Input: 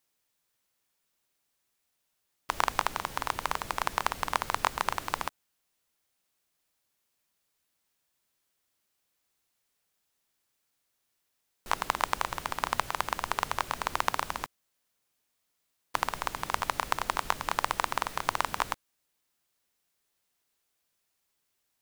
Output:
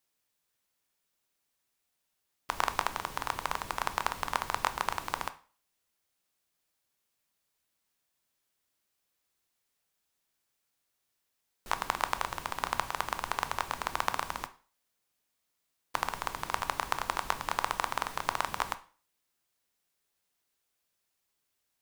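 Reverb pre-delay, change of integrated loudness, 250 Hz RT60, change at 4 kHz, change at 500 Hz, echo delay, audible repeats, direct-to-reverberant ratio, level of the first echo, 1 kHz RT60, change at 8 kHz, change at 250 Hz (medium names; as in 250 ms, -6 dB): 6 ms, -2.0 dB, 0.40 s, -2.0 dB, -2.0 dB, no echo, no echo, 11.0 dB, no echo, 0.40 s, -2.5 dB, -2.0 dB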